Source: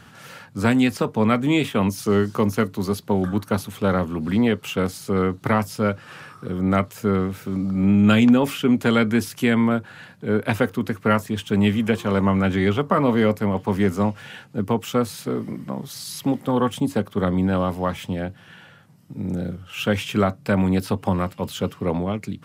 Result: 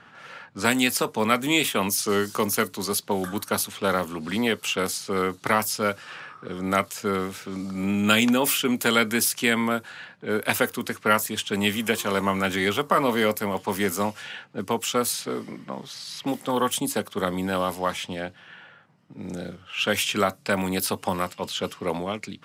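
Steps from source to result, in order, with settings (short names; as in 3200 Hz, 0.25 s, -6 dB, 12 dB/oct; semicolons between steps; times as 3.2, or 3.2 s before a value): low-pass opened by the level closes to 1800 Hz, open at -17.5 dBFS; RIAA curve recording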